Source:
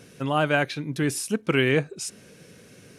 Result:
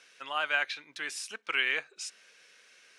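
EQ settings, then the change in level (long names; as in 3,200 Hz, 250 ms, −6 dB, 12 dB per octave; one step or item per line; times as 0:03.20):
high-pass filter 1,400 Hz 12 dB per octave
high-frequency loss of the air 83 metres
0.0 dB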